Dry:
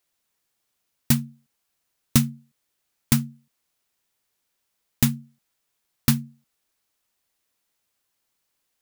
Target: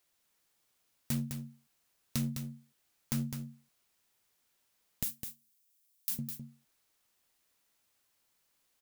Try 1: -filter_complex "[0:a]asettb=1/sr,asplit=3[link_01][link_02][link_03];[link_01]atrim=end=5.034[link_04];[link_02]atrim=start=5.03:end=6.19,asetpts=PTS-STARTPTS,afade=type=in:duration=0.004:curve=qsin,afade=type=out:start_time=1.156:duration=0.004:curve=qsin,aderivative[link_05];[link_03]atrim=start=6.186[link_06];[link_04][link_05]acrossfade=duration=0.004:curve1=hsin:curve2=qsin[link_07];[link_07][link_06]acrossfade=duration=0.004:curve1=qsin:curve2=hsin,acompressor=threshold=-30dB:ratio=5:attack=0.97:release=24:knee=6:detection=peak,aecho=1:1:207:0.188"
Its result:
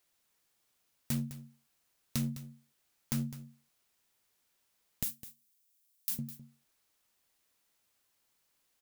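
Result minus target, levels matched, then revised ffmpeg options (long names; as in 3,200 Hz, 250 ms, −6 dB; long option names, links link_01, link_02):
echo-to-direct −7 dB
-filter_complex "[0:a]asettb=1/sr,asplit=3[link_01][link_02][link_03];[link_01]atrim=end=5.034[link_04];[link_02]atrim=start=5.03:end=6.19,asetpts=PTS-STARTPTS,afade=type=in:duration=0.004:curve=qsin,afade=type=out:start_time=1.156:duration=0.004:curve=qsin,aderivative[link_05];[link_03]atrim=start=6.186[link_06];[link_04][link_05]acrossfade=duration=0.004:curve1=hsin:curve2=qsin[link_07];[link_07][link_06]acrossfade=duration=0.004:curve1=qsin:curve2=hsin,acompressor=threshold=-30dB:ratio=5:attack=0.97:release=24:knee=6:detection=peak,aecho=1:1:207:0.422"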